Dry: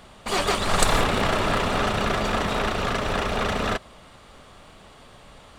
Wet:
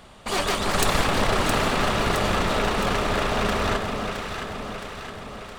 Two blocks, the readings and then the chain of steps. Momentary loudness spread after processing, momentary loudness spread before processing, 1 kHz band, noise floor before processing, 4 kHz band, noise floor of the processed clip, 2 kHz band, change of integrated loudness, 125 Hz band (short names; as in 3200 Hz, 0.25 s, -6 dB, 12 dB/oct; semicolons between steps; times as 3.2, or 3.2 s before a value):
12 LU, 5 LU, +0.5 dB, -49 dBFS, +1.0 dB, -40 dBFS, +1.0 dB, 0.0 dB, +1.0 dB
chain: one-sided fold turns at -20 dBFS; echo with dull and thin repeats by turns 0.333 s, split 1200 Hz, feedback 76%, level -3.5 dB